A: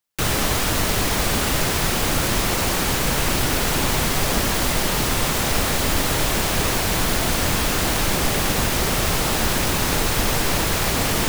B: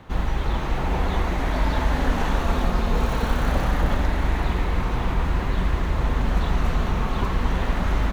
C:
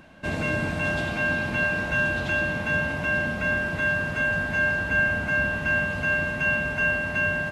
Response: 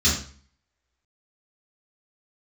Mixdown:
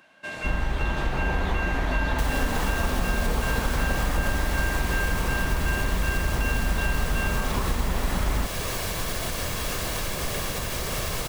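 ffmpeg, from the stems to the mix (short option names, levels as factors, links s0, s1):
-filter_complex "[0:a]alimiter=limit=0.188:level=0:latency=1:release=292,aecho=1:1:1.8:0.35,adelay=2000,volume=0.631[s0];[1:a]adelay=350,volume=1.26[s1];[2:a]highpass=f=1000:p=1,volume=0.841[s2];[s0][s1][s2]amix=inputs=3:normalize=0,acompressor=threshold=0.0708:ratio=2.5"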